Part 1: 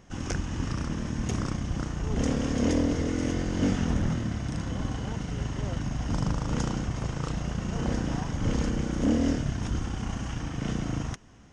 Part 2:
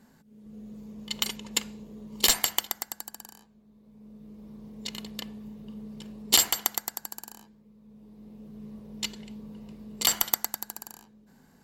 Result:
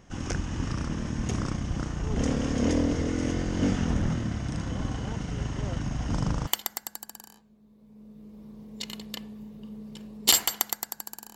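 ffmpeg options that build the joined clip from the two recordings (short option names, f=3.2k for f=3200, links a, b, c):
-filter_complex "[0:a]apad=whole_dur=11.35,atrim=end=11.35,atrim=end=6.472[a];[1:a]atrim=start=2.518:end=7.4[b];[a][b]acrossfade=d=0.004:c1=hsin:c2=hsin"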